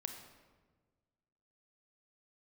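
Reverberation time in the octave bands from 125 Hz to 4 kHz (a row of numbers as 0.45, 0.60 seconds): 1.9, 1.7, 1.6, 1.3, 1.1, 0.85 seconds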